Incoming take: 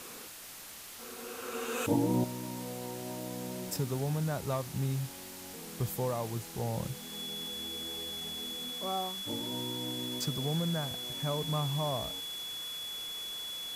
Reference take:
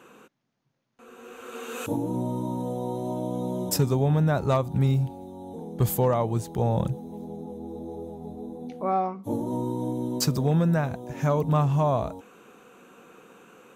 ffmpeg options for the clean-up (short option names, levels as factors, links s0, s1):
-af "adeclick=t=4,bandreject=f=3400:w=30,afwtdn=0.005,asetnsamples=n=441:p=0,asendcmd='2.24 volume volume 10.5dB',volume=1"